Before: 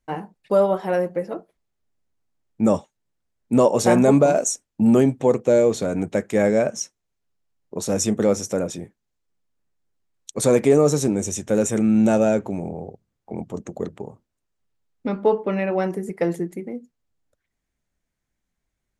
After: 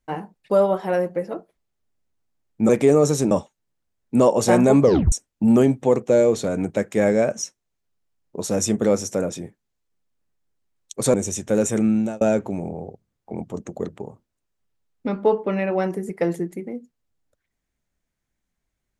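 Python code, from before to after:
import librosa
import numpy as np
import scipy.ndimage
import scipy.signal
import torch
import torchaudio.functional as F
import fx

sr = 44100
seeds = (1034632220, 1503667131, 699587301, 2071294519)

y = fx.edit(x, sr, fx.tape_stop(start_s=4.2, length_s=0.3),
    fx.move(start_s=10.52, length_s=0.62, to_s=2.69),
    fx.fade_out_span(start_s=11.86, length_s=0.35), tone=tone)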